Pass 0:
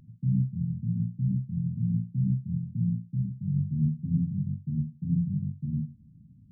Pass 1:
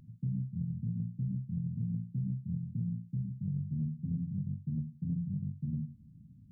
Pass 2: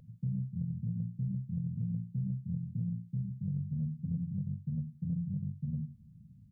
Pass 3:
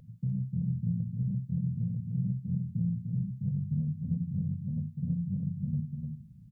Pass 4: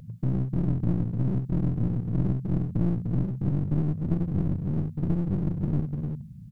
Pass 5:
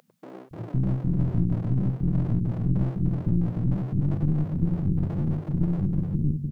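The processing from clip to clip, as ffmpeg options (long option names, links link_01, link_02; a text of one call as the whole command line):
ffmpeg -i in.wav -af "acompressor=threshold=-30dB:ratio=6,volume=-1.5dB" out.wav
ffmpeg -i in.wav -af "firequalizer=gain_entry='entry(200,0);entry(300,-12);entry(500,6);entry(860,0)':delay=0.05:min_phase=1" out.wav
ffmpeg -i in.wav -af "aecho=1:1:300:0.596,volume=2.5dB" out.wav
ffmpeg -i in.wav -af "aeval=exprs='clip(val(0),-1,0.01)':channel_layout=same,volume=8.5dB" out.wav
ffmpeg -i in.wav -filter_complex "[0:a]acrossover=split=370[link_01][link_02];[link_01]adelay=510[link_03];[link_03][link_02]amix=inputs=2:normalize=0,volume=2dB" out.wav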